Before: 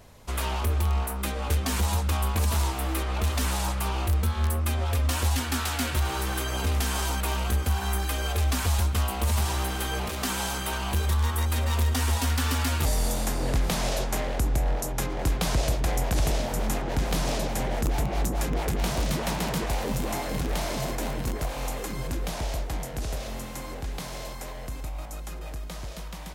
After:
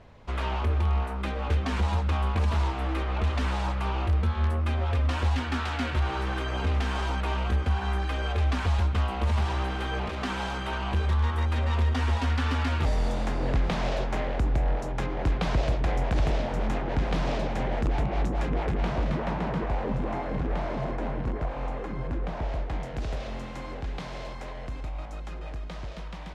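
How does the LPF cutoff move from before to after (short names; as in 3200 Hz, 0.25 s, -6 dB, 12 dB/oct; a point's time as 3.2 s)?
18.36 s 2900 Hz
19.37 s 1700 Hz
22.36 s 1700 Hz
22.94 s 3400 Hz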